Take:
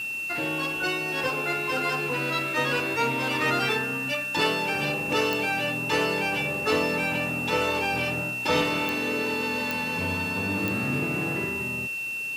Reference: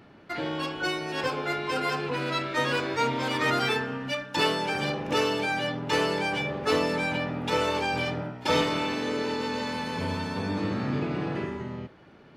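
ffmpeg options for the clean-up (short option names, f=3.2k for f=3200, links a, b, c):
-af "adeclick=t=4,bandreject=f=2.7k:w=30,afwtdn=0.0045"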